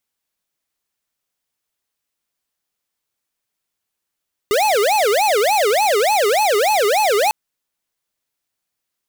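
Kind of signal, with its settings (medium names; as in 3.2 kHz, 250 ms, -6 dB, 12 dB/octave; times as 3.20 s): siren wail 401–866 Hz 3.4 per s square -15.5 dBFS 2.80 s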